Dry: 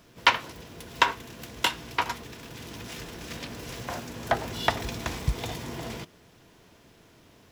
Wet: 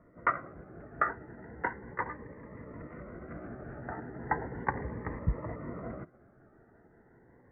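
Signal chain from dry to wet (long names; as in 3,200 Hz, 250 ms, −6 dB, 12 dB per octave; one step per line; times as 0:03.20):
pitch shifter gated in a rhythm +4 semitones, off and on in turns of 91 ms
Chebyshev low-pass with heavy ripple 2,000 Hz, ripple 3 dB
phaser whose notches keep moving one way rising 0.36 Hz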